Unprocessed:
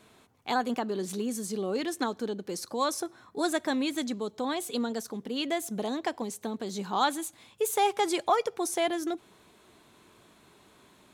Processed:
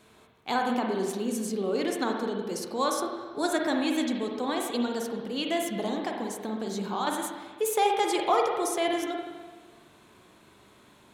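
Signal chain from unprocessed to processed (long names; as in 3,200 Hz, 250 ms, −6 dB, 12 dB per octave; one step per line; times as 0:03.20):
0:05.88–0:07.07: downward compressor, threshold −29 dBFS, peak gain reduction 9 dB
convolution reverb RT60 1.4 s, pre-delay 41 ms, DRR 1 dB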